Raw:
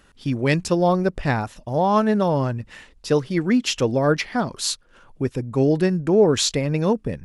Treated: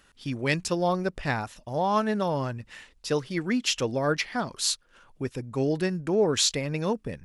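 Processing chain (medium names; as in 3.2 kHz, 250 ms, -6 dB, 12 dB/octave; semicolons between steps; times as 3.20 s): tilt shelf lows -3.5 dB; trim -5 dB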